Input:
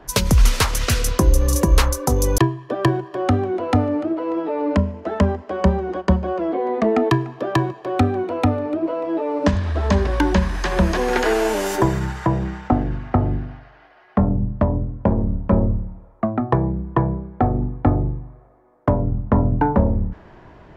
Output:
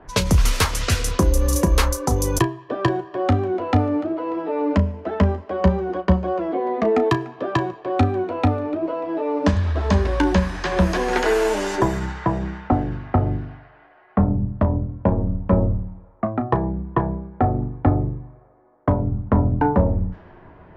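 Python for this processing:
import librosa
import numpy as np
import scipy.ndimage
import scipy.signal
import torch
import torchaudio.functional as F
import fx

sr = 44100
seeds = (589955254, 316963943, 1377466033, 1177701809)

y = fx.env_lowpass(x, sr, base_hz=2100.0, full_db=-13.5)
y = fx.room_early_taps(y, sr, ms=(11, 34), db=(-9.5, -13.0))
y = F.gain(torch.from_numpy(y), -1.5).numpy()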